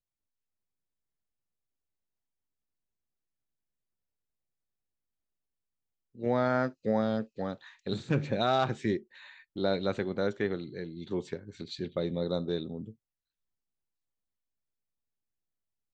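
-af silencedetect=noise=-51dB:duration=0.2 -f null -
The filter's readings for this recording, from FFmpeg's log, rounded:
silence_start: 0.00
silence_end: 6.15 | silence_duration: 6.15
silence_start: 12.93
silence_end: 15.94 | silence_duration: 3.01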